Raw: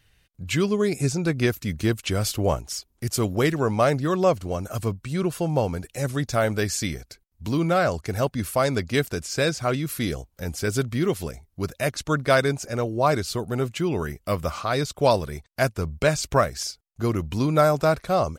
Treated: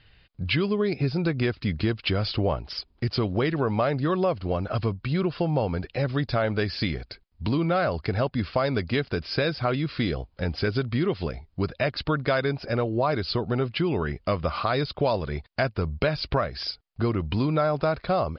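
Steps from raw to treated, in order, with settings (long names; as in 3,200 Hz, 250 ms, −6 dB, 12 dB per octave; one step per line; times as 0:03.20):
Chebyshev low-pass filter 5,000 Hz, order 8
in parallel at +0.5 dB: brickwall limiter −14.5 dBFS, peak gain reduction 8 dB
on the sum: downward compressor 3 to 1, threshold −23 dBFS, peak gain reduction 10 dB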